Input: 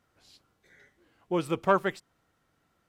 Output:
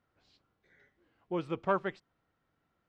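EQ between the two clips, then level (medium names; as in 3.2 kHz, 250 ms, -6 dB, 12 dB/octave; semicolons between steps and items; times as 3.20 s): distance through air 160 m; -5.5 dB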